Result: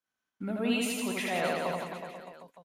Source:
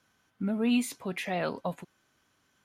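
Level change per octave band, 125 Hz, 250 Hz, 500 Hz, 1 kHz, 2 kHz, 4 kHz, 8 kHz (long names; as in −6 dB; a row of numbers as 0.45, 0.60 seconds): −2.5, −3.0, +2.0, +3.0, +3.5, +3.5, +3.5 decibels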